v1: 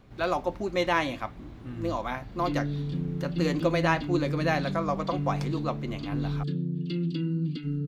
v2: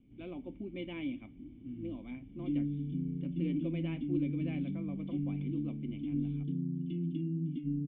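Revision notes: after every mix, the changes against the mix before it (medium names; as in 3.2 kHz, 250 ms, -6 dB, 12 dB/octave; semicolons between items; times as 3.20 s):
background: add bass shelf 97 Hz +11.5 dB; master: add cascade formant filter i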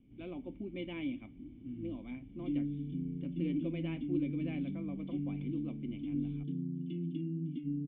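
background: add bass shelf 97 Hz -11.5 dB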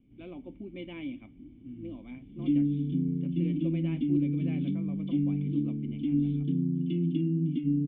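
background +9.5 dB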